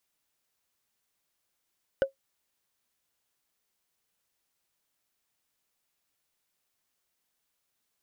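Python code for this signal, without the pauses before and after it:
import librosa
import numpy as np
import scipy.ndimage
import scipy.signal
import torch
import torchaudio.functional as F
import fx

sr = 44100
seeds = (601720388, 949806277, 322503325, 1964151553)

y = fx.strike_wood(sr, length_s=0.45, level_db=-16, body='bar', hz=542.0, decay_s=0.12, tilt_db=8.5, modes=5)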